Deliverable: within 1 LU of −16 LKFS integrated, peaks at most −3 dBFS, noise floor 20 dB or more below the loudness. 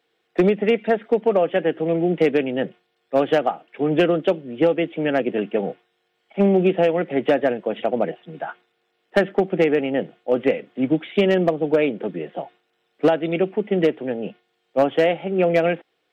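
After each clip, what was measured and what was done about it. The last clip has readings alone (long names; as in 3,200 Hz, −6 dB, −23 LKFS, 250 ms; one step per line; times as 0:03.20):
share of clipped samples 0.7%; peaks flattened at −9.0 dBFS; integrated loudness −21.0 LKFS; sample peak −9.0 dBFS; target loudness −16.0 LKFS
→ clipped peaks rebuilt −9 dBFS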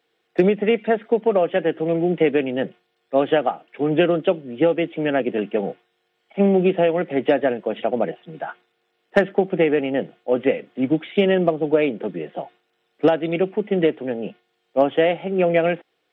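share of clipped samples 0.0%; integrated loudness −21.0 LKFS; sample peak −3.0 dBFS; target loudness −16.0 LKFS
→ level +5 dB
brickwall limiter −3 dBFS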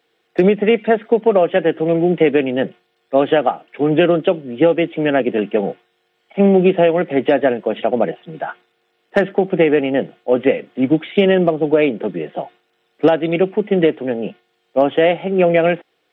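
integrated loudness −16.5 LKFS; sample peak −3.0 dBFS; background noise floor −66 dBFS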